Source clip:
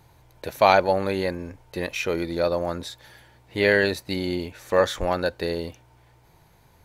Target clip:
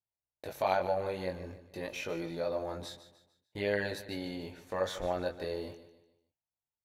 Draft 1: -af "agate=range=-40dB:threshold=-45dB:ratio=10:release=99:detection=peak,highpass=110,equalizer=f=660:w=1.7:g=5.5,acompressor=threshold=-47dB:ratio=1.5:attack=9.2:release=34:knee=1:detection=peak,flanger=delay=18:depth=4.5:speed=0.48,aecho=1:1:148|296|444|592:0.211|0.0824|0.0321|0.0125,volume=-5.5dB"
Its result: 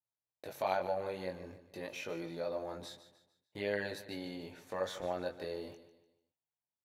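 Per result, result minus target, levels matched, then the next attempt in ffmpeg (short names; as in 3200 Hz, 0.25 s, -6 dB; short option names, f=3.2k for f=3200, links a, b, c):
compressor: peak gain reduction +4 dB; 125 Hz band -2.5 dB
-af "agate=range=-40dB:threshold=-45dB:ratio=10:release=99:detection=peak,highpass=110,equalizer=f=660:w=1.7:g=5.5,acompressor=threshold=-35dB:ratio=1.5:attack=9.2:release=34:knee=1:detection=peak,flanger=delay=18:depth=4.5:speed=0.48,aecho=1:1:148|296|444|592:0.211|0.0824|0.0321|0.0125,volume=-5.5dB"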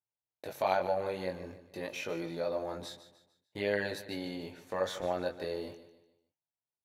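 125 Hz band -2.5 dB
-af "agate=range=-40dB:threshold=-45dB:ratio=10:release=99:detection=peak,equalizer=f=660:w=1.7:g=5.5,acompressor=threshold=-35dB:ratio=1.5:attack=9.2:release=34:knee=1:detection=peak,flanger=delay=18:depth=4.5:speed=0.48,aecho=1:1:148|296|444|592:0.211|0.0824|0.0321|0.0125,volume=-5.5dB"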